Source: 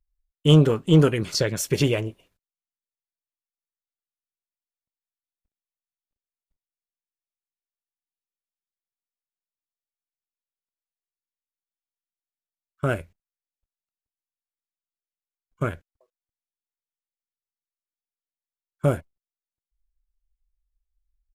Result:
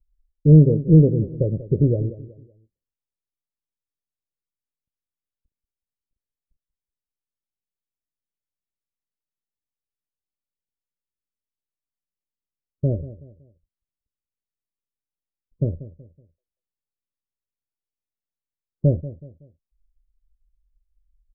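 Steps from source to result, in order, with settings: elliptic low-pass 560 Hz, stop band 70 dB; bass shelf 170 Hz +11.5 dB; feedback delay 187 ms, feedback 36%, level -15.5 dB; trim -1 dB

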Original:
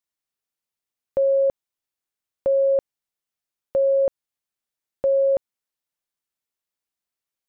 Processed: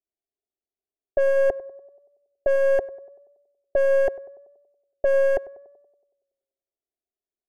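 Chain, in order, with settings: one-sided wavefolder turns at -21.5 dBFS; level-controlled noise filter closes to 360 Hz, open at -18 dBFS; high-order bell 530 Hz +15 dB 1.2 oct; static phaser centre 760 Hz, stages 8; on a send: tape echo 95 ms, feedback 65%, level -15 dB, low-pass 1.1 kHz

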